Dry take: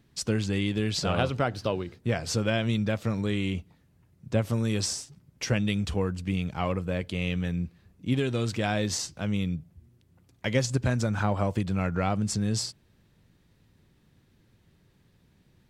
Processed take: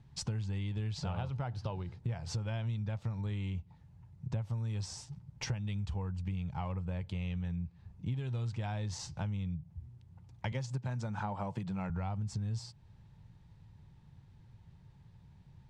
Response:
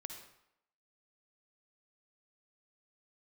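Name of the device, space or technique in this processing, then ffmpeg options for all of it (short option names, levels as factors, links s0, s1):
jukebox: -filter_complex "[0:a]equalizer=f=880:t=o:w=0.43:g=12.5,asettb=1/sr,asplit=3[s0][s1][s2];[s0]atrim=end=10.524[s3];[s1]atrim=start=10.52:end=11.9,asetpts=PTS-STARTPTS,afade=t=in:d=0.004:c=qsin,afade=t=out:st=1.376:d=0.004:c=qsin,highpass=f=140:w=0.5412,highpass=f=140:w=1.3066[s4];[s2]atrim=start=11.896[s5];[s3][s4]acrossfade=d=0.004:c1=hsin:c2=qsin[s6];[s6][s5]acrossfade=d=0.004:c1=qsin:c2=hsin,lowpass=7500,lowshelf=f=190:t=q:w=1.5:g=10.5,acompressor=threshold=0.0316:ratio=5,volume=0.562"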